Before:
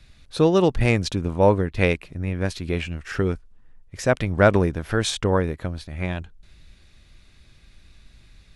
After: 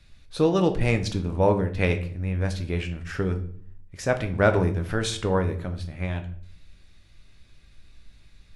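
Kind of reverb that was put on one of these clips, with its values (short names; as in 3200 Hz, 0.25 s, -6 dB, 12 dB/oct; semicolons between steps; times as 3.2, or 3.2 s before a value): shoebox room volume 72 m³, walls mixed, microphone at 0.36 m; gain -4.5 dB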